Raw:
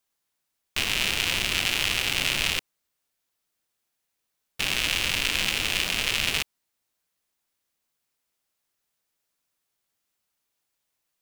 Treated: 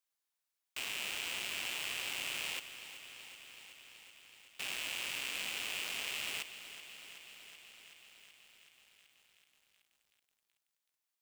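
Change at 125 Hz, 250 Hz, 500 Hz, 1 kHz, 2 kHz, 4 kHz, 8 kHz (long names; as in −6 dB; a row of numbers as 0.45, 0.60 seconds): −24.5, −18.5, −14.0, −13.0, −13.0, −14.0, −12.0 decibels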